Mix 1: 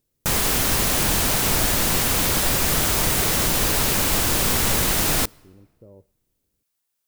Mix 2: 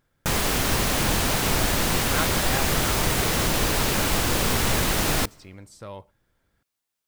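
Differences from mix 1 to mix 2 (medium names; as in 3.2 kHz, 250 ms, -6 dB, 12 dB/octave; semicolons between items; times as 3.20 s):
speech: remove four-pole ladder low-pass 530 Hz, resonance 35%; master: add treble shelf 6.4 kHz -8 dB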